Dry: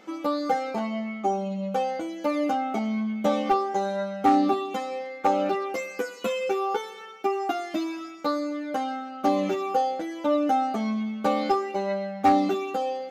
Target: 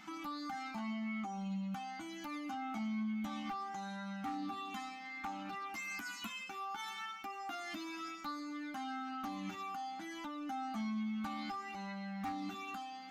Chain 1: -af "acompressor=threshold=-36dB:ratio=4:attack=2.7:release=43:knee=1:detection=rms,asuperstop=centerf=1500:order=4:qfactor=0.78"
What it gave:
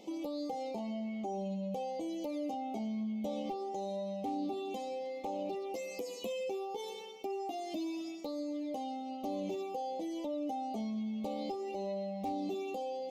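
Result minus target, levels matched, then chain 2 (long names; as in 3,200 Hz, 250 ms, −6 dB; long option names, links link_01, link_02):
500 Hz band +15.0 dB
-af "acompressor=threshold=-36dB:ratio=4:attack=2.7:release=43:knee=1:detection=rms,asuperstop=centerf=480:order=4:qfactor=0.78"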